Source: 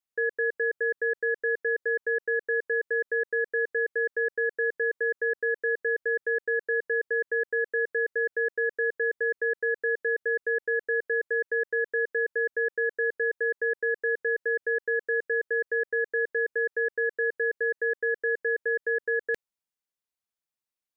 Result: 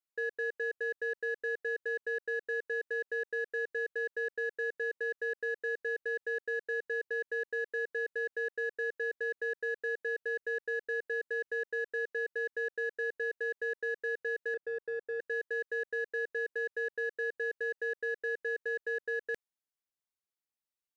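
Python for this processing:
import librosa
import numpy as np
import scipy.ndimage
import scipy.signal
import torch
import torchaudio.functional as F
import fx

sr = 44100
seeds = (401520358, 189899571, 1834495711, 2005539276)

p1 = fx.lowpass(x, sr, hz=1400.0, slope=24, at=(14.54, 15.2))
p2 = 10.0 ** (-34.5 / 20.0) * np.tanh(p1 / 10.0 ** (-34.5 / 20.0))
p3 = p1 + (p2 * librosa.db_to_amplitude(-8.0))
y = p3 * librosa.db_to_amplitude(-8.5)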